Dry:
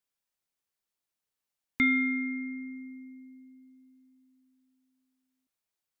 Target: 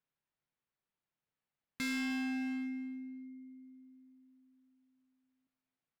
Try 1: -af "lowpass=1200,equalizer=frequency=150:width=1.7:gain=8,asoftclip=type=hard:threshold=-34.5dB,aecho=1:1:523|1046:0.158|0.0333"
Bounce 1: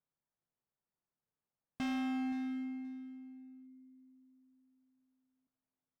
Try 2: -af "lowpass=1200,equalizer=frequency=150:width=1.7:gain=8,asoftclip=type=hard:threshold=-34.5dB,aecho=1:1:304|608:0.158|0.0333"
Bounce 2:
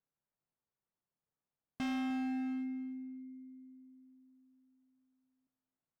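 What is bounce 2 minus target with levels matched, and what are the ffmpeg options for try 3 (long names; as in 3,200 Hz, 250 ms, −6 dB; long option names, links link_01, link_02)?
2,000 Hz band −7.0 dB
-af "lowpass=2600,equalizer=frequency=150:width=1.7:gain=8,asoftclip=type=hard:threshold=-34.5dB,aecho=1:1:304|608:0.158|0.0333"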